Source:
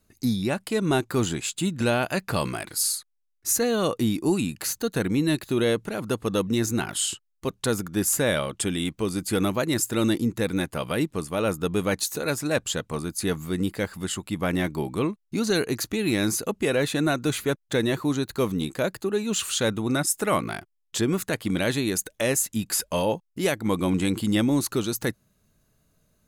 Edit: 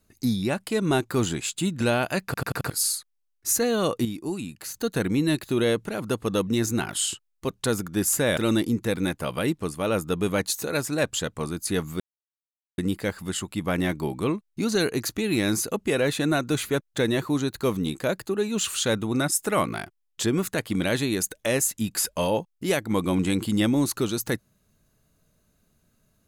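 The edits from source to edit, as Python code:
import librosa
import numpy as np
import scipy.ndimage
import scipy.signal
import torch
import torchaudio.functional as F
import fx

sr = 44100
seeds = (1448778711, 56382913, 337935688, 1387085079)

y = fx.edit(x, sr, fx.stutter_over(start_s=2.25, slice_s=0.09, count=5),
    fx.clip_gain(start_s=4.05, length_s=0.69, db=-7.5),
    fx.cut(start_s=8.37, length_s=1.53),
    fx.insert_silence(at_s=13.53, length_s=0.78), tone=tone)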